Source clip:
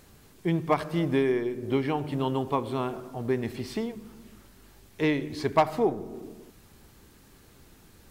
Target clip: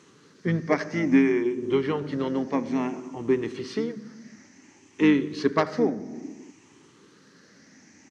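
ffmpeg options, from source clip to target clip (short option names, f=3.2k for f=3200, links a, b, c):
-filter_complex "[0:a]afftfilt=real='re*pow(10,10/40*sin(2*PI*(0.65*log(max(b,1)*sr/1024/100)/log(2)-(0.58)*(pts-256)/sr)))':imag='im*pow(10,10/40*sin(2*PI*(0.65*log(max(b,1)*sr/1024/100)/log(2)-(0.58)*(pts-256)/sr)))':win_size=1024:overlap=0.75,asplit=2[a][b];[b]asetrate=29433,aresample=44100,atempo=1.49831,volume=-10dB[c];[a][c]amix=inputs=2:normalize=0,highpass=f=130:w=0.5412,highpass=f=130:w=1.3066,equalizer=f=130:t=q:w=4:g=-5,equalizer=f=280:t=q:w=4:g=7,equalizer=f=700:t=q:w=4:g=-7,equalizer=f=1.9k:t=q:w=4:g=7,equalizer=f=3.6k:t=q:w=4:g=-5,equalizer=f=6.1k:t=q:w=4:g=10,lowpass=f=6.6k:w=0.5412,lowpass=f=6.6k:w=1.3066"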